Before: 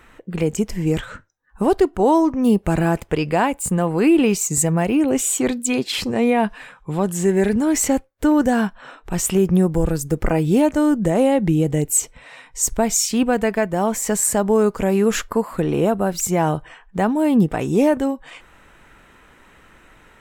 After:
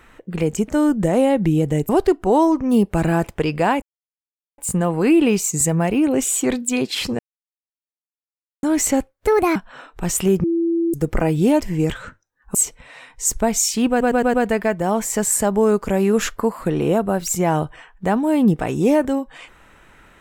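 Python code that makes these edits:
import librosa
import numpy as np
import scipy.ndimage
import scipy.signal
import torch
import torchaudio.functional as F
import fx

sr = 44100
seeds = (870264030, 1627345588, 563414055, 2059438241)

y = fx.edit(x, sr, fx.swap(start_s=0.68, length_s=0.94, other_s=10.7, other_length_s=1.21),
    fx.insert_silence(at_s=3.55, length_s=0.76),
    fx.silence(start_s=6.16, length_s=1.44),
    fx.speed_span(start_s=8.24, length_s=0.41, speed=1.43),
    fx.bleep(start_s=9.53, length_s=0.5, hz=335.0, db=-16.0),
    fx.stutter(start_s=13.26, slice_s=0.11, count=5), tone=tone)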